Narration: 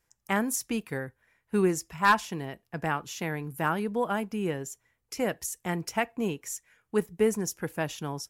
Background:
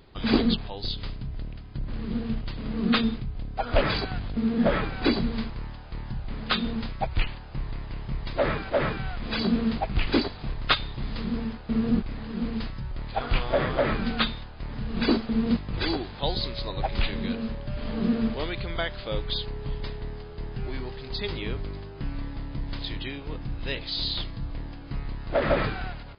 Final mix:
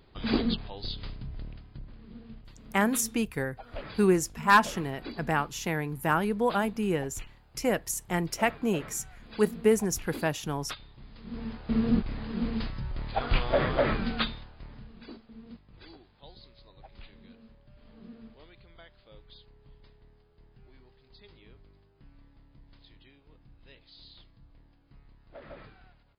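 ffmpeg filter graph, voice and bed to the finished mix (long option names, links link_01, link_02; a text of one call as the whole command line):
ffmpeg -i stem1.wav -i stem2.wav -filter_complex "[0:a]adelay=2450,volume=2dB[link_01];[1:a]volume=11.5dB,afade=type=out:start_time=1.51:duration=0.45:silence=0.237137,afade=type=in:start_time=11.22:duration=0.47:silence=0.149624,afade=type=out:start_time=13.81:duration=1.18:silence=0.0749894[link_02];[link_01][link_02]amix=inputs=2:normalize=0" out.wav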